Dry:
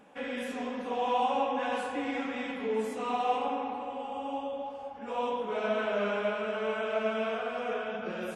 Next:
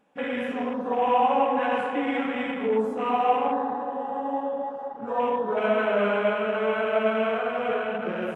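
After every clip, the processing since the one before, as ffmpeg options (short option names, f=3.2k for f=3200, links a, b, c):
-af "afwtdn=0.00794,volume=7dB"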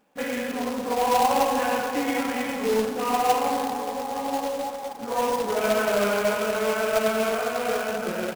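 -af "acrusher=bits=2:mode=log:mix=0:aa=0.000001,aecho=1:1:1131:0.141"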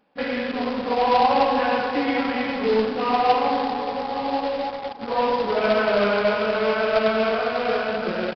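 -filter_complex "[0:a]asplit=2[a][b];[b]acrusher=bits=4:mix=0:aa=0.000001,volume=-8dB[c];[a][c]amix=inputs=2:normalize=0,aresample=11025,aresample=44100"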